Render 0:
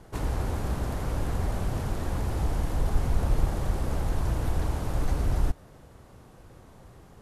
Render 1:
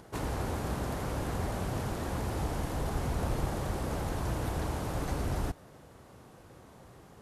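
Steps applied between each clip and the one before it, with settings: HPF 130 Hz 6 dB/oct; upward compressor, threshold -53 dBFS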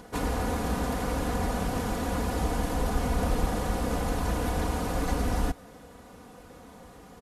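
comb 4.1 ms; gain +4 dB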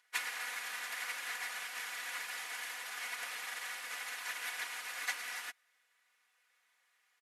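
resonant high-pass 2000 Hz, resonance Q 2.5; upward expander 2.5:1, over -48 dBFS; gain +2.5 dB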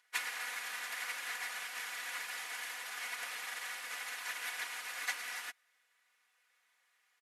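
nothing audible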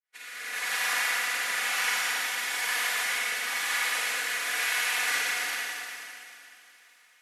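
opening faded in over 0.74 s; rotary speaker horn 1 Hz; Schroeder reverb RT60 2.8 s, DRR -8.5 dB; gain +7 dB

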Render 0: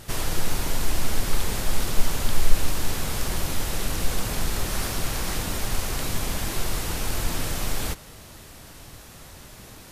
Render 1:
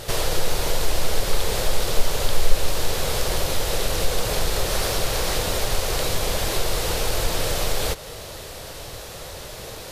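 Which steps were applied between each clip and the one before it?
graphic EQ 250/500/4000 Hz -8/+11/+5 dB; in parallel at +2.5 dB: compressor, threshold -30 dBFS, peak gain reduction 22 dB; on the sum: gain -1 dB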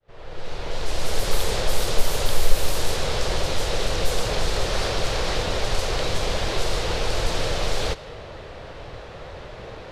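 opening faded in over 1.30 s; low-pass opened by the level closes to 2000 Hz, open at -11.5 dBFS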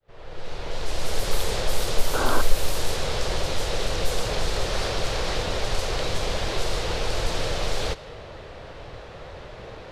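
painted sound noise, 2.13–2.42, 230–1600 Hz -24 dBFS; gain -2 dB

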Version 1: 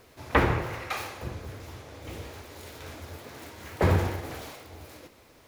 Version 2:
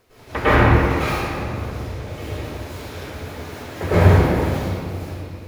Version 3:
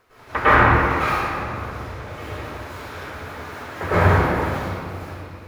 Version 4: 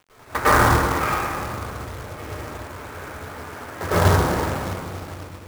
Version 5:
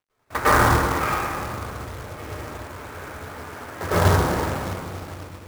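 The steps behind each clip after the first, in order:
reverb RT60 2.1 s, pre-delay 97 ms, DRR -15 dB; gain -5.5 dB
bell 1300 Hz +11 dB 1.6 oct; gain -5 dB
Wiener smoothing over 9 samples; treble ducked by the level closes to 1700 Hz, closed at -14 dBFS; companded quantiser 4-bit; gain -1 dB
gate with hold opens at -33 dBFS; gain -1 dB

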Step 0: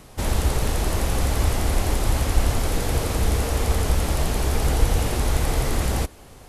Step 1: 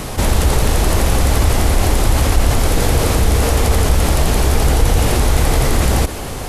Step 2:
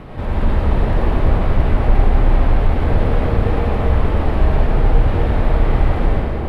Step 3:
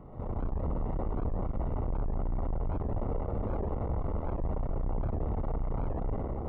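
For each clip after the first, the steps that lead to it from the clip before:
fast leveller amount 50%; gain +4 dB
air absorption 490 m; reverb RT60 3.0 s, pre-delay 79 ms, DRR -6.5 dB; gain -8.5 dB
tube stage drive 19 dB, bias 0.75; polynomial smoothing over 65 samples; record warp 78 rpm, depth 250 cents; gain -8.5 dB

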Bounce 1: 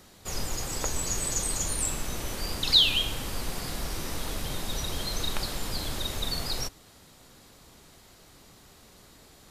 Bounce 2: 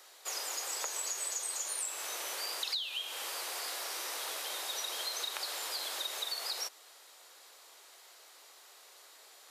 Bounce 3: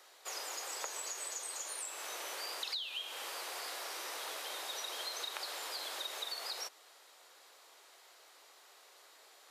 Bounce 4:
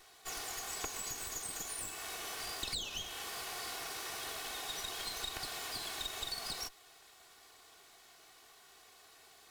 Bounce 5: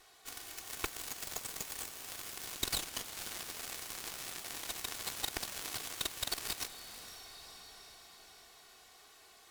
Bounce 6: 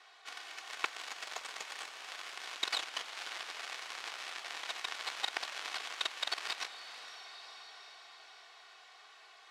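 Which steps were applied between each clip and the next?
Bessel high-pass 700 Hz, order 8; compressor 16:1, threshold -33 dBFS, peak gain reduction 18.5 dB
high shelf 4200 Hz -6 dB; gain -1 dB
minimum comb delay 2.7 ms; gain +2 dB
diffused feedback echo 0.496 s, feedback 52%, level -4 dB; added harmonics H 5 -24 dB, 7 -12 dB, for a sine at -22.5 dBFS; gain +5.5 dB
BPF 760–3600 Hz; gain +6 dB

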